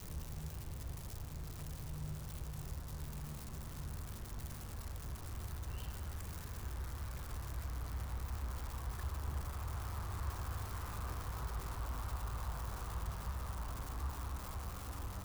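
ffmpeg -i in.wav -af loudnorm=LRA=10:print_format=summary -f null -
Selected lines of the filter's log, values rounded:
Input Integrated:    -44.3 LUFS
Input True Peak:     -29.0 dBTP
Input LRA:             3.3 LU
Input Threshold:     -54.3 LUFS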